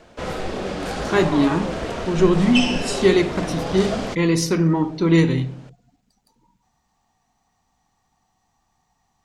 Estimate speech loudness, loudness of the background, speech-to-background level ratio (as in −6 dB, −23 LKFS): −20.0 LKFS, −27.0 LKFS, 7.0 dB